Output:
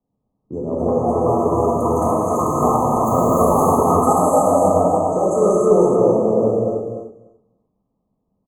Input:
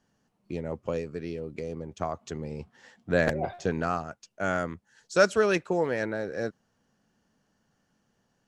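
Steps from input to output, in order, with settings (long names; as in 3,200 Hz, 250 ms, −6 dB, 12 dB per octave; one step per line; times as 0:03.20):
delay with pitch and tempo change per echo 411 ms, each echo +6 semitones, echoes 3
in parallel at −4 dB: gain into a clipping stage and back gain 21 dB
on the sum: brick-wall band-stop 1,300–6,200 Hz
downward compressor, threshold −24 dBFS, peak gain reduction 10 dB
low-pass that shuts in the quiet parts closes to 820 Hz, open at −27 dBFS
on a send: repeating echo 294 ms, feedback 17%, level −4.5 dB
on the sum: reverb whose tail is shaped and stops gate 350 ms flat, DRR −5.5 dB
multiband upward and downward expander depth 40%
level +5.5 dB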